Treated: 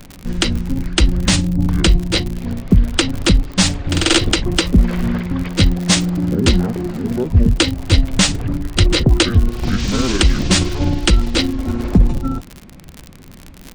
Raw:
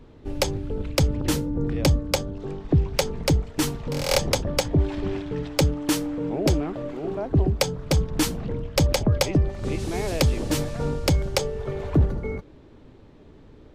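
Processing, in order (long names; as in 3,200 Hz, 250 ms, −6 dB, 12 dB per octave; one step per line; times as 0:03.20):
pitch shift by two crossfaded delay taps −8.5 semitones
high-shelf EQ 3,300 Hz +10.5 dB
surface crackle 68 per second −31 dBFS
boost into a limiter +11.5 dB
level −1 dB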